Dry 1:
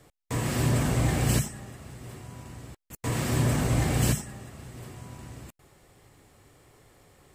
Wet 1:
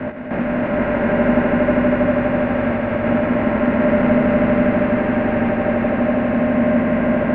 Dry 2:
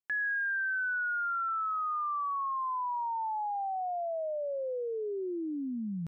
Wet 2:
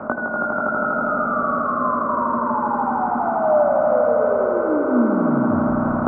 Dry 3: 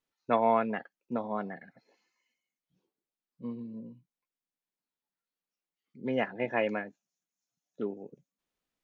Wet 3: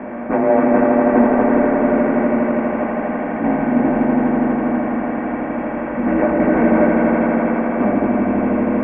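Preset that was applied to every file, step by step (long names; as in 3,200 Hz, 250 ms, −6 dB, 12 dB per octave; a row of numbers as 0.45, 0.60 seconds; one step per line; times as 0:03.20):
compressor on every frequency bin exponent 0.2
single-sideband voice off tune −200 Hz 350–2,500 Hz
in parallel at +1 dB: speech leveller within 3 dB 0.5 s
on the sum: hollow resonant body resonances 240/600 Hz, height 16 dB, ringing for 75 ms
multi-voice chorus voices 2, 0.63 Hz, delay 19 ms, depth 2.9 ms
on a send: echo that builds up and dies away 81 ms, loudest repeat 5, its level −6 dB
on the sum: level −1.5 dB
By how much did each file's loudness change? +9.0, +13.0, +15.5 LU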